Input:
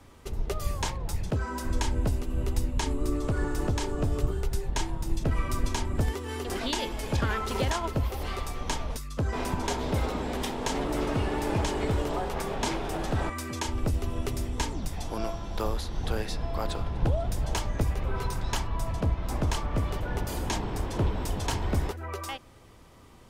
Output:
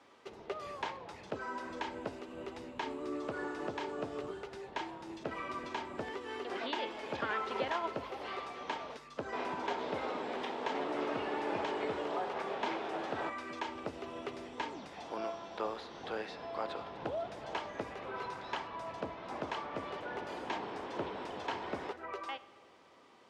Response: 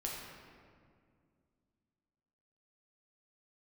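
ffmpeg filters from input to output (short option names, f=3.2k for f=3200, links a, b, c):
-filter_complex "[0:a]acrossover=split=3400[a][b];[b]acompressor=threshold=-50dB:ratio=4:attack=1:release=60[c];[a][c]amix=inputs=2:normalize=0,highpass=370,lowpass=4.8k,asplit=2[d][e];[1:a]atrim=start_sample=2205,adelay=55[f];[e][f]afir=irnorm=-1:irlink=0,volume=-17.5dB[g];[d][g]amix=inputs=2:normalize=0,volume=-3.5dB"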